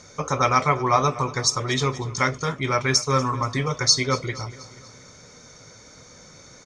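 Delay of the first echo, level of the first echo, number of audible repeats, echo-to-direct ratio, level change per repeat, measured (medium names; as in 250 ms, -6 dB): 239 ms, -18.5 dB, 3, -17.0 dB, -5.5 dB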